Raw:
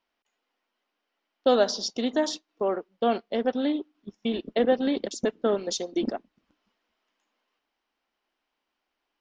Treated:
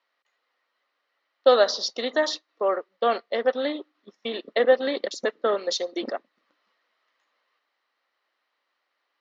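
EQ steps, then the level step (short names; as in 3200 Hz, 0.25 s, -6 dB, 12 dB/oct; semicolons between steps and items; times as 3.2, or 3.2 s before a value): speaker cabinet 390–6700 Hz, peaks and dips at 540 Hz +7 dB, 1200 Hz +9 dB, 1900 Hz +10 dB, 4100 Hz +8 dB; 0.0 dB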